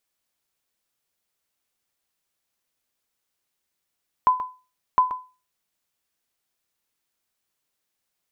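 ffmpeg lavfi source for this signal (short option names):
-f lavfi -i "aevalsrc='0.335*(sin(2*PI*1010*mod(t,0.71))*exp(-6.91*mod(t,0.71)/0.32)+0.251*sin(2*PI*1010*max(mod(t,0.71)-0.13,0))*exp(-6.91*max(mod(t,0.71)-0.13,0)/0.32))':d=1.42:s=44100"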